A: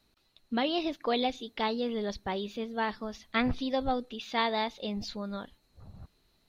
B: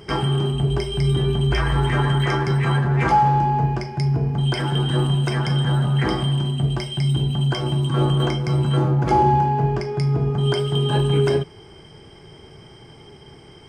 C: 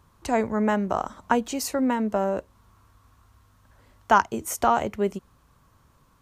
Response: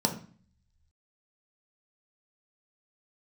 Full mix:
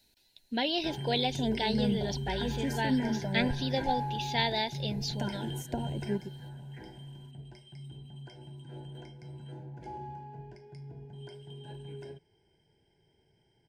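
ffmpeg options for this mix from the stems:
-filter_complex "[0:a]highshelf=f=3.3k:g=11.5,volume=-2.5dB,asplit=2[a][b];[1:a]adelay=750,volume=-17dB[c];[2:a]acrossover=split=360[d][e];[e]acompressor=threshold=-41dB:ratio=3[f];[d][f]amix=inputs=2:normalize=0,aphaser=in_gain=1:out_gain=1:delay=4.6:decay=0.41:speed=1.3:type=sinusoidal,adelay=1100,volume=-6.5dB[g];[b]apad=whole_len=636710[h];[c][h]sidechaingate=range=-9dB:threshold=-60dB:ratio=16:detection=peak[i];[a][i][g]amix=inputs=3:normalize=0,asuperstop=centerf=1200:order=12:qfactor=3"

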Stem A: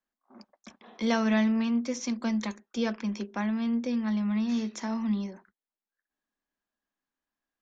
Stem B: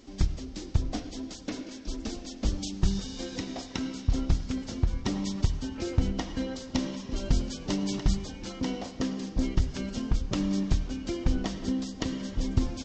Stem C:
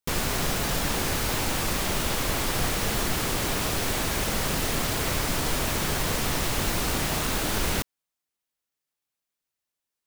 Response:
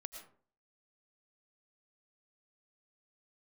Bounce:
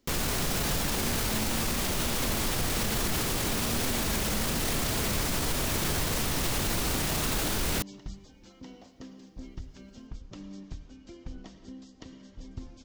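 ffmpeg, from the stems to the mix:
-filter_complex "[0:a]volume=-9.5dB[a];[1:a]volume=-17.5dB,asplit=2[b][c];[c]volume=-6dB[d];[2:a]volume=1.5dB[e];[3:a]atrim=start_sample=2205[f];[d][f]afir=irnorm=-1:irlink=0[g];[a][b][e][g]amix=inputs=4:normalize=0,acrossover=split=410|3000[h][i][j];[i]acompressor=threshold=-31dB:ratio=6[k];[h][k][j]amix=inputs=3:normalize=0,alimiter=limit=-19.5dB:level=0:latency=1:release=21"

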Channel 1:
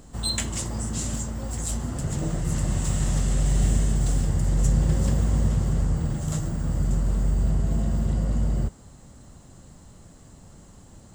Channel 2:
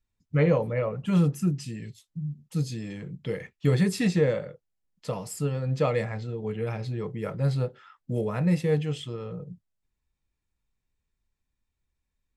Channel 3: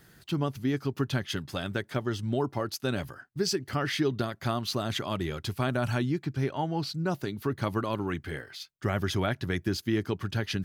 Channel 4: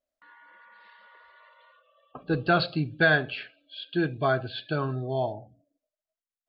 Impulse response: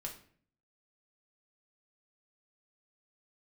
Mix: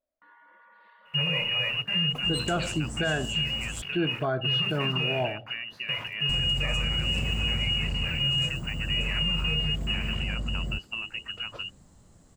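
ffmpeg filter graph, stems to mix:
-filter_complex "[0:a]adelay=2100,volume=-8dB,asplit=3[a][b][c];[a]atrim=end=3.82,asetpts=PTS-STARTPTS,afade=t=out:st=3.816:d=0.004:c=hsin[d];[b]atrim=start=3.82:end=6.29,asetpts=PTS-STARTPTS,volume=0[e];[c]atrim=start=6.29,asetpts=PTS-STARTPTS,afade=t=in:d=0.004:c=hsin[f];[d][e][f]concat=n=3:v=0:a=1[g];[1:a]equalizer=f=125:t=o:w=1:g=11,equalizer=f=250:t=o:w=1:g=-7,equalizer=f=1k:t=o:w=1:g=9,equalizer=f=8k:t=o:w=1:g=-4,aeval=exprs='val(0)*gte(abs(val(0)),0.0299)':c=same,adelay=800,volume=-5.5dB,asplit=2[h][i];[i]volume=-8.5dB[j];[2:a]acompressor=threshold=-30dB:ratio=6,adelay=1050,volume=-1.5dB,asplit=2[k][l];[l]volume=-18dB[m];[3:a]lowpass=f=1.2k:p=1,volume=1dB[n];[h][k]amix=inputs=2:normalize=0,lowpass=f=2.6k:t=q:w=0.5098,lowpass=f=2.6k:t=q:w=0.6013,lowpass=f=2.6k:t=q:w=0.9,lowpass=f=2.6k:t=q:w=2.563,afreqshift=-3000,alimiter=limit=-19.5dB:level=0:latency=1,volume=0dB[o];[4:a]atrim=start_sample=2205[p];[j][m]amix=inputs=2:normalize=0[q];[q][p]afir=irnorm=-1:irlink=0[r];[g][n][o][r]amix=inputs=4:normalize=0,alimiter=limit=-18dB:level=0:latency=1:release=60"

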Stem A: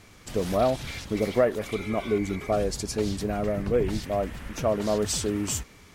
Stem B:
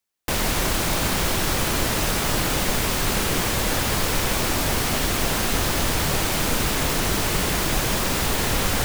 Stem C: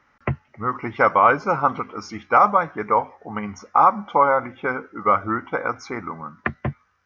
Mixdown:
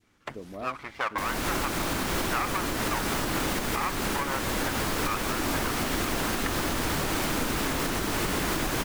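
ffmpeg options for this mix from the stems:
-filter_complex "[0:a]volume=-17.5dB[a];[1:a]adelay=900,volume=2.5dB[b];[2:a]aeval=exprs='max(val(0),0)':c=same,highpass=f=840:p=1,volume=-4dB[c];[a][b]amix=inputs=2:normalize=0,equalizer=f=290:w=1.5:g=7.5,acompressor=threshold=-22dB:ratio=4,volume=0dB[d];[c][d]amix=inputs=2:normalize=0,adynamicequalizer=threshold=0.0112:dfrequency=1300:dqfactor=0.82:tfrequency=1300:tqfactor=0.82:attack=5:release=100:ratio=0.375:range=2.5:mode=boostabove:tftype=bell,alimiter=limit=-17.5dB:level=0:latency=1:release=430"

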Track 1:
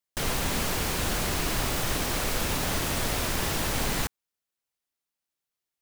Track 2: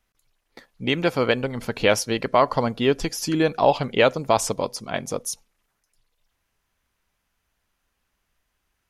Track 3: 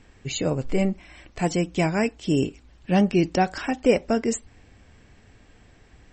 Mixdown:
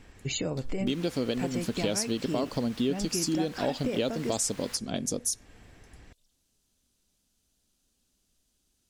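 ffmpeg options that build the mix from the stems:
-filter_complex "[0:a]highpass=1.1k,highshelf=f=6.6k:g=-11.5,adelay=700,volume=-9dB[a];[1:a]equalizer=f=250:t=o:w=1:g=8,equalizer=f=1k:t=o:w=1:g=-9,equalizer=f=2k:t=o:w=1:g=-11,equalizer=f=4k:t=o:w=1:g=6,equalizer=f=8k:t=o:w=1:g=10,volume=-1.5dB[b];[2:a]acompressor=threshold=-26dB:ratio=2.5,volume=0dB[c];[a][b][c]amix=inputs=3:normalize=0,acompressor=threshold=-28dB:ratio=3"

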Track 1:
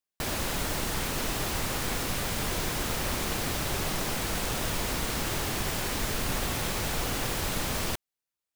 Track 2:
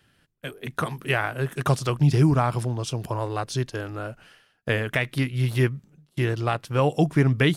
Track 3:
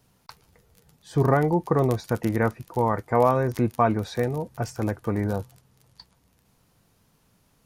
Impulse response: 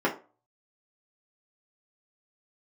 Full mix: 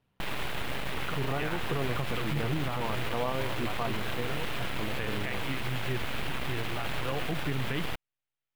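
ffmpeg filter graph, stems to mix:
-filter_complex "[0:a]aeval=exprs='abs(val(0))':c=same,volume=2.5dB[a];[1:a]adelay=300,volume=-9.5dB[b];[2:a]volume=-9dB[c];[a][b][c]amix=inputs=3:normalize=0,tremolo=f=130:d=0.333,highshelf=f=4.2k:t=q:w=1.5:g=-11.5,alimiter=limit=-21dB:level=0:latency=1:release=28"

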